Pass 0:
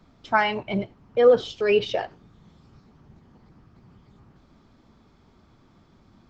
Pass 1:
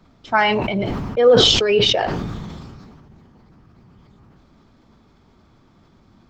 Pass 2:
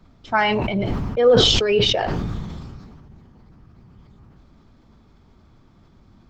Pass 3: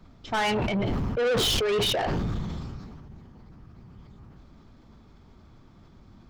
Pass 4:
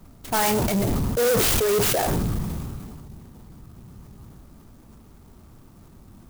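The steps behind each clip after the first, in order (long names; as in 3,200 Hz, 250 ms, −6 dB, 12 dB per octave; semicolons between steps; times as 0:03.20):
level that may fall only so fast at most 26 dB per second; level +2.5 dB
low-shelf EQ 110 Hz +9 dB; level −2.5 dB
soft clipping −22 dBFS, distortion −6 dB
converter with an unsteady clock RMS 0.091 ms; level +4 dB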